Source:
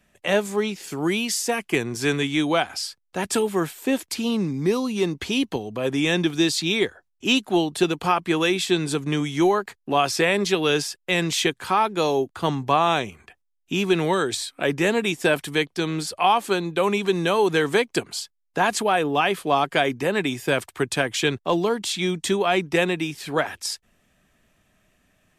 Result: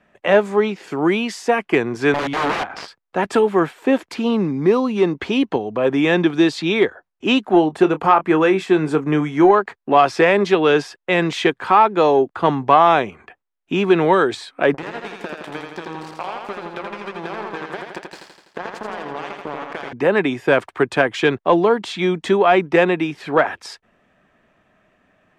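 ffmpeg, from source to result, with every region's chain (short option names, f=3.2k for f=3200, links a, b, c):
-filter_complex "[0:a]asettb=1/sr,asplit=3[a][b][c];[a]atrim=end=2.144[d];[b]atrim=start=2.14:end=2.88,asetpts=PTS-STARTPTS,afade=t=in:d=0.004:c=qsin,afade=t=out:st=0.736:d=0.004:c=qsin,aeval=exprs='(mod(11.2*val(0)+1,2)-1)/11.2':c=same,adynamicsmooth=sensitivity=7:basefreq=2.3k[e];[c]atrim=start=2.876[f];[d][e]acrossfade=d=0.004:c1=hsin:c2=qsin[g];[g][f]acrossfade=d=0.004:c1=qsin:c2=hsin,asettb=1/sr,asplit=3[h][i][j];[h]atrim=end=7.474[k];[i]atrim=start=7.47:end=9.51,asetpts=PTS-STARTPTS,afade=t=in:d=0.004:c=qsin,afade=t=out:st=2.036:d=0.004:c=qsin,equalizer=f=3.7k:t=o:w=0.89:g=-7.5,asplit=2[l][m];[m]adelay=26,volume=-12dB[n];[l][n]amix=inputs=2:normalize=0,atrim=end_sample=89964[o];[j]atrim=start=9.506[p];[k][o]acrossfade=d=0.004:c1=hsin:c2=qsin[q];[q][p]acrossfade=d=0.004:c1=qsin:c2=hsin,asettb=1/sr,asplit=3[r][s][t];[r]atrim=end=14.744[u];[s]atrim=start=14.74:end=19.93,asetpts=PTS-STARTPTS,afade=t=in:d=0.004:c=qsin,afade=t=out:st=5.186:d=0.004:c=qsin,acompressor=threshold=-31dB:ratio=20:attack=3.2:release=140:knee=1:detection=peak,acrusher=bits=4:mix=0:aa=0.5,aecho=1:1:83|166|249|332|415|498|581|664|747:0.631|0.379|0.227|0.136|0.0818|0.0491|0.0294|0.0177|0.0106,atrim=end_sample=228879[v];[t]atrim=start=19.926[w];[u][v]acrossfade=d=0.004:c1=hsin:c2=qsin[x];[x][w]acrossfade=d=0.004:c1=qsin:c2=hsin,lowpass=1.5k,aemphasis=mode=production:type=bsi,acontrast=85,volume=2.5dB"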